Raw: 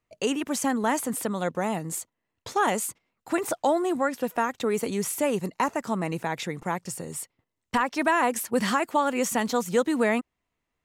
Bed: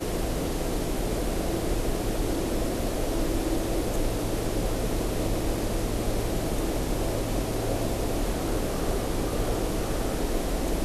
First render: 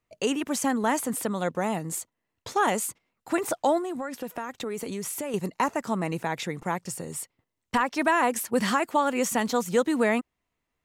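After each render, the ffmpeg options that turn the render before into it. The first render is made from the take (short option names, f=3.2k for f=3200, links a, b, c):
-filter_complex "[0:a]asettb=1/sr,asplit=3[a][b][c];[a]atrim=end=3.784[d];[b]atrim=start=3.78:end=5.34,asetpts=PTS-STARTPTS,afade=t=in:d=0.004:c=qsin,afade=t=out:st=1.556:d=0.004:c=qsin,acompressor=threshold=-29dB:ratio=5:attack=3.2:release=140:knee=1:detection=peak[e];[c]atrim=start=5.336[f];[d][e]acrossfade=d=0.004:c1=hsin:c2=qsin[g];[g][f]acrossfade=d=0.004:c1=qsin:c2=hsin"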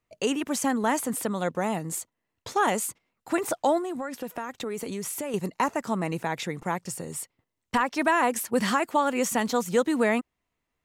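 -af anull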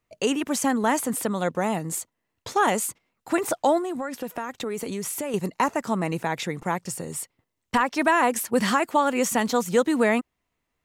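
-af "volume=2.5dB"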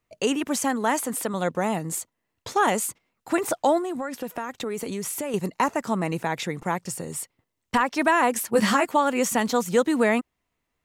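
-filter_complex "[0:a]asettb=1/sr,asplit=3[a][b][c];[a]atrim=end=0.644[d];[b]atrim=start=0.64:end=1.34,asetpts=PTS-STARTPTS,afade=t=in:d=0.004:c=qsin,afade=t=out:st=0.696:d=0.004:c=qsin,lowshelf=f=160:g=-11[e];[c]atrim=start=1.336[f];[d][e]acrossfade=d=0.004:c1=hsin:c2=qsin[g];[g][f]acrossfade=d=0.004:c1=qsin:c2=hsin,asettb=1/sr,asplit=3[h][i][j];[h]atrim=end=8.514[k];[i]atrim=start=8.51:end=8.92,asetpts=PTS-STARTPTS,afade=t=in:d=0.004:c=qsin,afade=t=out:st=0.406:d=0.004:c=qsin,asplit=2[l][m];[m]adelay=14,volume=-3dB[n];[l][n]amix=inputs=2:normalize=0,atrim=end_sample=18081[o];[j]atrim=start=8.916[p];[k][o]acrossfade=d=0.004:c1=hsin:c2=qsin[q];[q][p]acrossfade=d=0.004:c1=qsin:c2=hsin"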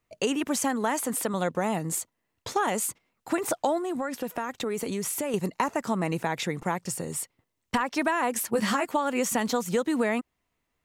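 -af "acompressor=threshold=-22dB:ratio=6"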